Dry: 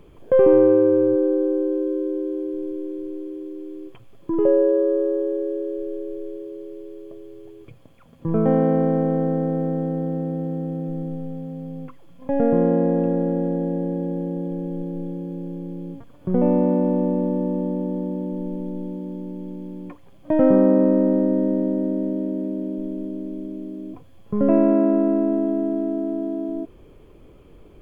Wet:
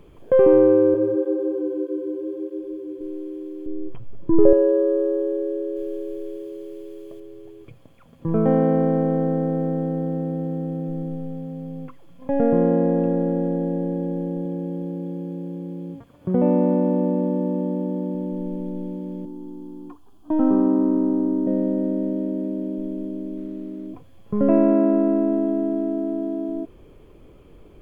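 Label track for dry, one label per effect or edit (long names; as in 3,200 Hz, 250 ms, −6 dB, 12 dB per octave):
0.940000	3.010000	through-zero flanger with one copy inverted nulls at 1.6 Hz, depth 6.5 ms
3.660000	4.530000	spectral tilt −3 dB per octave
5.760000	7.200000	high-shelf EQ 2,100 Hz +7.5 dB
14.450000	18.150000	high-pass filter 42 Hz
19.250000	21.470000	phaser with its sweep stopped centre 560 Hz, stages 6
23.370000	23.870000	running median over 25 samples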